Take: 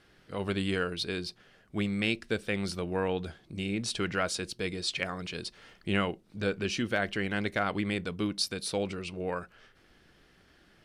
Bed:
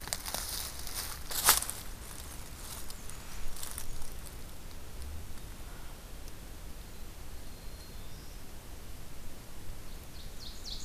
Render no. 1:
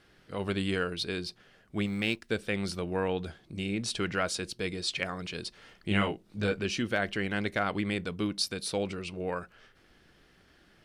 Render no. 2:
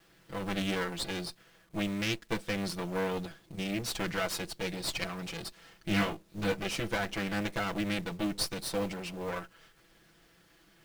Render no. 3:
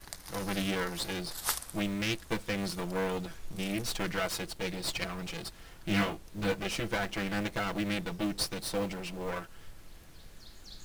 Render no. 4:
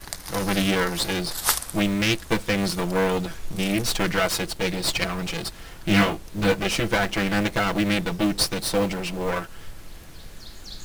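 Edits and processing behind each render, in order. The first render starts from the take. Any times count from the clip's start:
0:01.86–0:02.29: mu-law and A-law mismatch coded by A; 0:05.89–0:06.60: double-tracking delay 19 ms −3.5 dB
lower of the sound and its delayed copy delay 6 ms; log-companded quantiser 6 bits
mix in bed −8 dB
level +10 dB

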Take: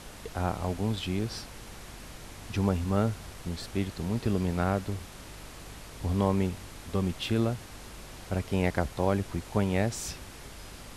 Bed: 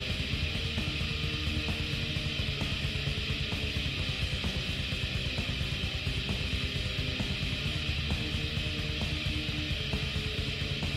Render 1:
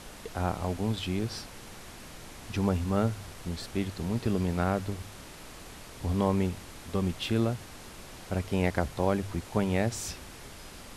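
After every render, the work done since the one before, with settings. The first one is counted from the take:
hum removal 50 Hz, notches 3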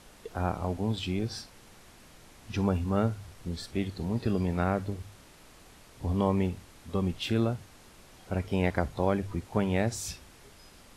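noise reduction from a noise print 8 dB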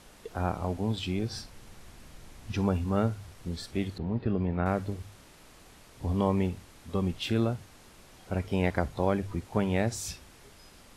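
0:01.33–0:02.53: low-shelf EQ 130 Hz +9.5 dB
0:03.98–0:04.66: high-frequency loss of the air 390 metres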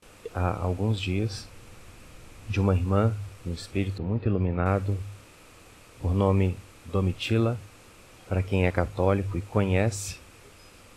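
noise gate with hold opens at −45 dBFS
thirty-one-band graphic EQ 100 Hz +10 dB, 315 Hz +4 dB, 500 Hz +7 dB, 1,250 Hz +6 dB, 2,500 Hz +8 dB, 8,000 Hz +4 dB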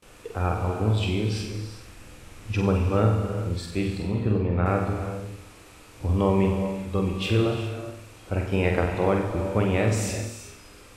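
flutter between parallel walls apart 8 metres, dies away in 0.55 s
reverb whose tail is shaped and stops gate 430 ms flat, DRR 5.5 dB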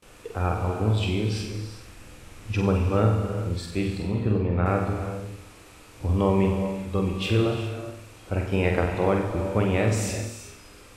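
no processing that can be heard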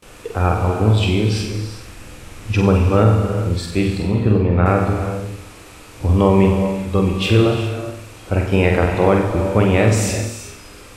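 level +8.5 dB
brickwall limiter −1 dBFS, peak gain reduction 2.5 dB

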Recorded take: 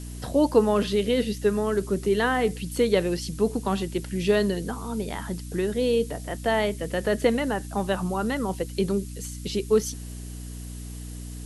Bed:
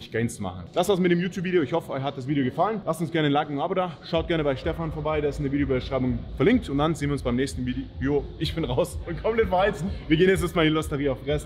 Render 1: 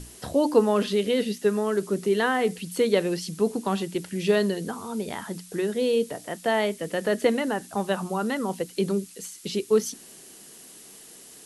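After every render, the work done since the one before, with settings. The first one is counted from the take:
mains-hum notches 60/120/180/240/300 Hz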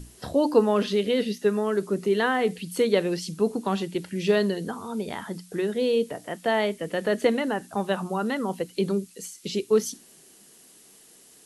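noise reduction from a noise print 6 dB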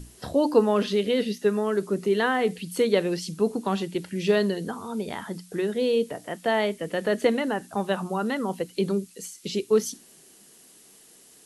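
no processing that can be heard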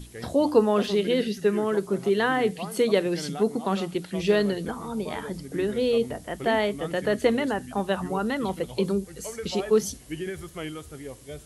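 mix in bed −14 dB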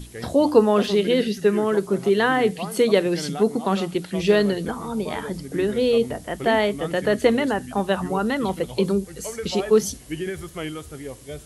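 level +4 dB

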